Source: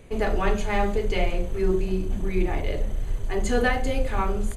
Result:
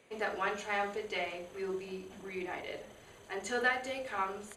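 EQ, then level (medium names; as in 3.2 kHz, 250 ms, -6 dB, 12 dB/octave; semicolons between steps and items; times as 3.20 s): frequency weighting A; dynamic bell 1.5 kHz, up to +4 dB, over -40 dBFS, Q 2.2; -7.5 dB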